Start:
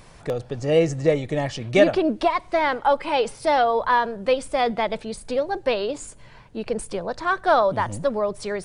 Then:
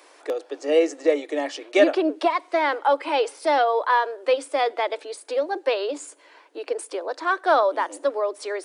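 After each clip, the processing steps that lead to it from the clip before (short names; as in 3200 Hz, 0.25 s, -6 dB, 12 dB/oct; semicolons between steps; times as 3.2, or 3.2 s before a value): Chebyshev high-pass 280 Hz, order 8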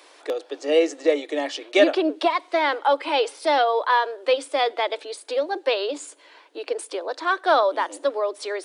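bell 3600 Hz +6 dB 0.83 oct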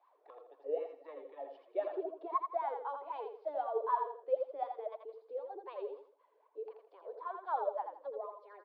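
steep low-pass 4800 Hz; wah 3.9 Hz 420–1100 Hz, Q 12; feedback echo 83 ms, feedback 27%, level -6 dB; gain -6.5 dB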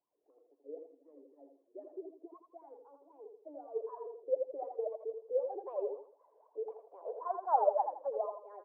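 low-pass sweep 220 Hz -> 760 Hz, 3.04–6.04; gain +1 dB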